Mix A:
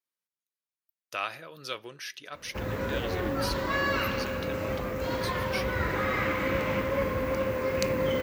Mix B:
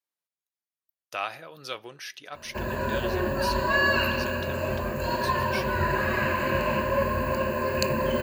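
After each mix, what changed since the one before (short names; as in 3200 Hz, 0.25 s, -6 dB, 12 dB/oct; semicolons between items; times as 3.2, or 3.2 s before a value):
background: add ripple EQ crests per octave 1.4, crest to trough 16 dB; master: add bell 770 Hz +6.5 dB 0.49 oct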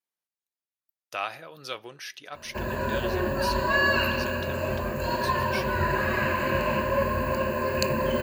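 none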